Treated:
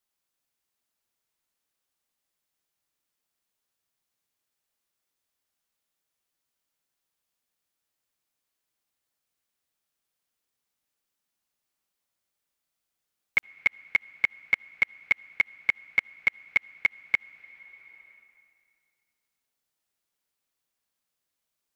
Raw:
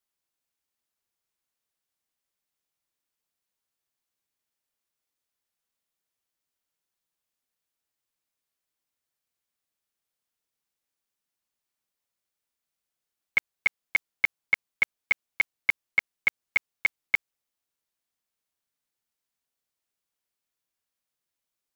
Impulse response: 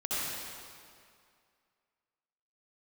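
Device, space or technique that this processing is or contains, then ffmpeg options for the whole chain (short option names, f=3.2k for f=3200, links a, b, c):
ducked reverb: -filter_complex "[0:a]asplit=3[a][b][c];[1:a]atrim=start_sample=2205[d];[b][d]afir=irnorm=-1:irlink=0[e];[c]apad=whole_len=959414[f];[e][f]sidechaincompress=threshold=-39dB:ratio=10:attack=20:release=623,volume=-10dB[g];[a][g]amix=inputs=2:normalize=0"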